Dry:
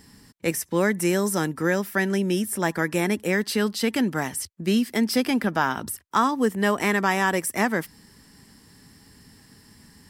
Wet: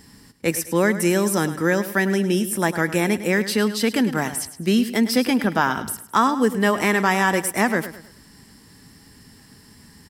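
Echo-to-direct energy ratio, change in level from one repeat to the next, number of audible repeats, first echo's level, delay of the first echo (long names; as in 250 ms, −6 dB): −12.5 dB, −9.0 dB, 3, −13.0 dB, 105 ms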